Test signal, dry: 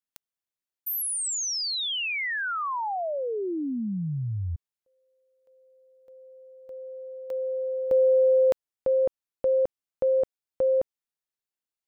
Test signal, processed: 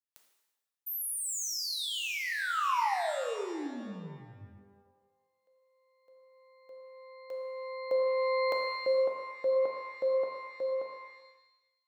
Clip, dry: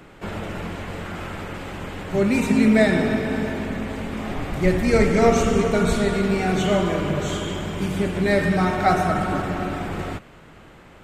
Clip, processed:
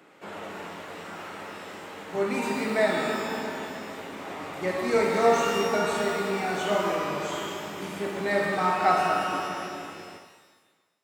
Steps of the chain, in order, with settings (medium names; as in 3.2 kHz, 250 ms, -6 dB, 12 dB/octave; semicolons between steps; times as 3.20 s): fade out at the end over 2.00 s; high-pass 280 Hz 12 dB/octave; dynamic bell 1 kHz, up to +7 dB, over -39 dBFS, Q 1.4; pitch-shifted reverb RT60 1 s, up +12 st, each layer -8 dB, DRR 2.5 dB; trim -8 dB